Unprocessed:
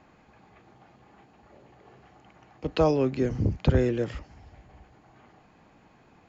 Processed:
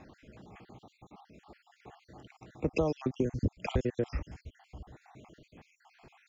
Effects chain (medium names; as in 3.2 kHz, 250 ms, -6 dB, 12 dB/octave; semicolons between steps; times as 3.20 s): random holes in the spectrogram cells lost 55%; peaking EQ 1.2 kHz -5 dB 2 oct; compression 6:1, threshold -33 dBFS, peak gain reduction 13.5 dB; trim +6.5 dB